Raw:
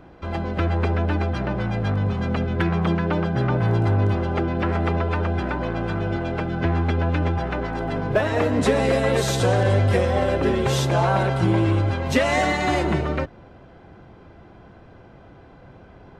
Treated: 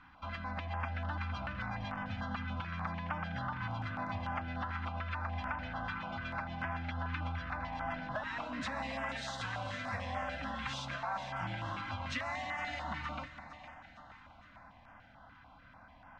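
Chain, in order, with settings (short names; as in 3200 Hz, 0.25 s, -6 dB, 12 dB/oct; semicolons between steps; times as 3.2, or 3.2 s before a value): Chebyshev band-stop 150–990 Hz, order 2; resonant low shelf 210 Hz -11 dB, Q 3; notches 50/100 Hz; compressor, threshold -33 dBFS, peak gain reduction 12 dB; air absorption 150 m; split-band echo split 500 Hz, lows 0.272 s, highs 0.461 s, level -11.5 dB; stepped notch 6.8 Hz 640–4000 Hz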